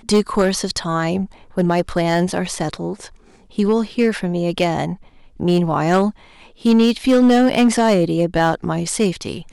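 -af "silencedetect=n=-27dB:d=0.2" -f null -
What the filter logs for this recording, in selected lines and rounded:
silence_start: 1.26
silence_end: 1.57 | silence_duration: 0.32
silence_start: 3.06
silence_end: 3.58 | silence_duration: 0.52
silence_start: 4.94
silence_end: 5.40 | silence_duration: 0.45
silence_start: 6.10
silence_end: 6.65 | silence_duration: 0.54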